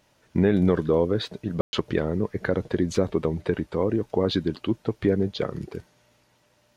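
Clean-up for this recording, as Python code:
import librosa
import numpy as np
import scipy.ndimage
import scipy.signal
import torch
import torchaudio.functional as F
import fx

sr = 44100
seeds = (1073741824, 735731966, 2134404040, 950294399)

y = fx.fix_ambience(x, sr, seeds[0], print_start_s=6.24, print_end_s=6.74, start_s=1.61, end_s=1.73)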